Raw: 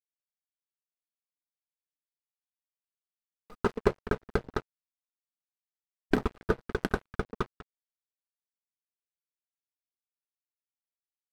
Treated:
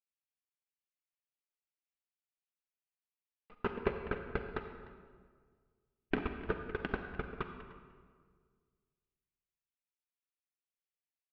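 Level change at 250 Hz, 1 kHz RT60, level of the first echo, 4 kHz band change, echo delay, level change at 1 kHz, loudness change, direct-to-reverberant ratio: −7.5 dB, 1.7 s, −18.5 dB, −6.5 dB, 300 ms, −6.5 dB, −7.0 dB, 6.0 dB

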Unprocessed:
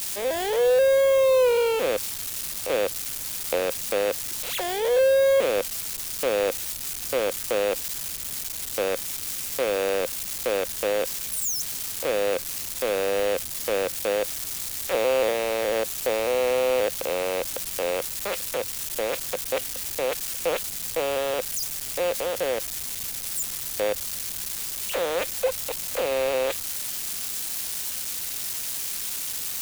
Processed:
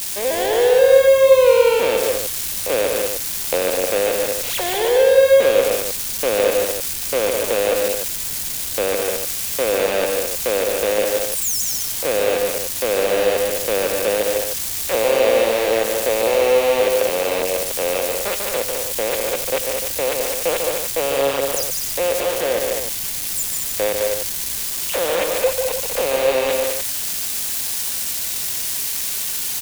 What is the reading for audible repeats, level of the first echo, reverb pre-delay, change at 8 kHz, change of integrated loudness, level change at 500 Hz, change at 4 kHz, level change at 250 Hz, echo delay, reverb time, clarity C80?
4, −14.5 dB, no reverb audible, +7.0 dB, +7.0 dB, +7.0 dB, +7.0 dB, +7.0 dB, 87 ms, no reverb audible, no reverb audible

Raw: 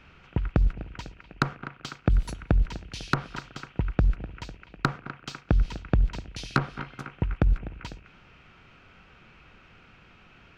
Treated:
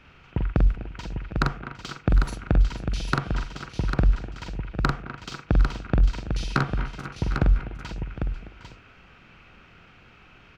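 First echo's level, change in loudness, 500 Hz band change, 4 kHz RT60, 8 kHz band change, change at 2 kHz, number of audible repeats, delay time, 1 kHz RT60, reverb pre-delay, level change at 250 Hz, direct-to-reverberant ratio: −4.0 dB, +2.5 dB, +2.0 dB, no reverb audible, can't be measured, +2.0 dB, 5, 44 ms, no reverb audible, no reverb audible, +2.0 dB, no reverb audible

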